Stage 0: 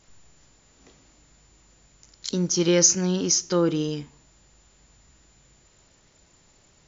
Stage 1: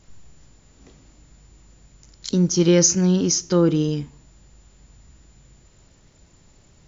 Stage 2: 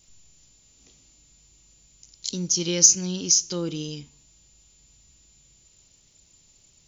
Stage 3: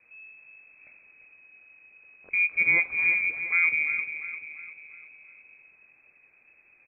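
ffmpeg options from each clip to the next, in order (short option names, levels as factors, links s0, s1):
-af "lowshelf=f=300:g=10"
-af "aexciter=amount=6:drive=1.5:freq=2400,volume=0.251"
-af "aecho=1:1:347|694|1041|1388|1735:0.316|0.155|0.0759|0.0372|0.0182,lowpass=f=2200:t=q:w=0.5098,lowpass=f=2200:t=q:w=0.6013,lowpass=f=2200:t=q:w=0.9,lowpass=f=2200:t=q:w=2.563,afreqshift=-2600,volume=1.88"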